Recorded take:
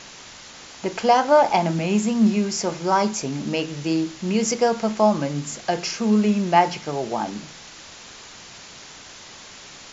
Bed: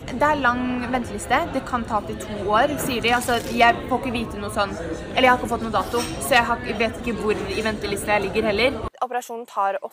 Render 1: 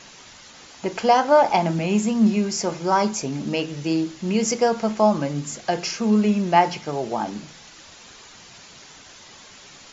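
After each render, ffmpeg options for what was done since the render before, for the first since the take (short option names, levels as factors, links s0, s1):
-af "afftdn=nr=6:nf=-43"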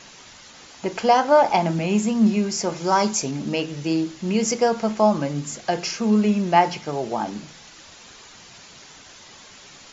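-filter_complex "[0:a]asettb=1/sr,asplit=3[s0][s1][s2];[s0]atrim=end=2.764[s3];[s1]atrim=start=2.76:end=3.31,asetpts=PTS-STARTPTS,afade=t=in:d=0.004:c=qsin,afade=t=out:st=0.546:d=0.004:c=qsin,highshelf=f=4100:g=7[s4];[s2]atrim=start=3.306[s5];[s3][s4]acrossfade=d=0.004:c1=hsin:c2=qsin[s6];[s6][s5]acrossfade=d=0.004:c1=qsin:c2=hsin"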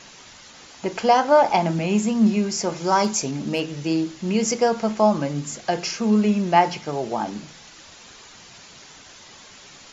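-filter_complex "[0:a]asettb=1/sr,asplit=3[s0][s1][s2];[s0]atrim=end=3.044[s3];[s1]atrim=start=3.04:end=3.73,asetpts=PTS-STARTPTS,afade=t=in:d=0.004:c=qsin,afade=t=out:st=0.686:d=0.004:c=qsin,asoftclip=type=hard:threshold=0.224[s4];[s2]atrim=start=3.726[s5];[s3][s4]acrossfade=d=0.004:c1=hsin:c2=qsin[s6];[s6][s5]acrossfade=d=0.004:c1=qsin:c2=hsin"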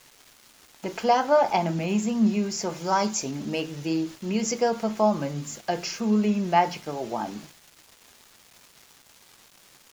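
-af "flanger=delay=2.1:depth=4:regen=-78:speed=0.26:shape=triangular,aeval=exprs='val(0)*gte(abs(val(0)),0.00596)':c=same"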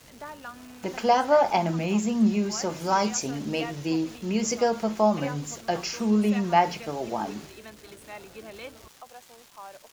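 -filter_complex "[1:a]volume=0.0794[s0];[0:a][s0]amix=inputs=2:normalize=0"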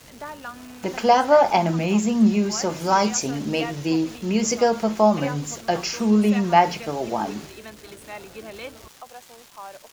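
-af "volume=1.68"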